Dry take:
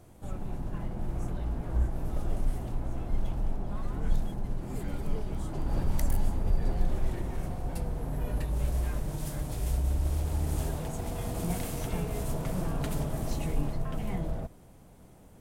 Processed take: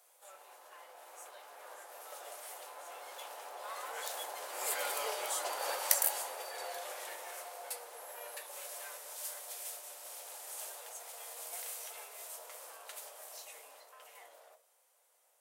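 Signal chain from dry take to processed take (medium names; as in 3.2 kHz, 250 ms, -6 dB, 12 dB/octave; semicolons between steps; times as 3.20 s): Doppler pass-by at 5.02 s, 7 m/s, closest 5.3 m; Chebyshev high-pass 510 Hz, order 4; tilt EQ +3 dB/octave; band-stop 650 Hz, Q 16; reverberation RT60 0.35 s, pre-delay 3 ms, DRR 8.5 dB; trim +9.5 dB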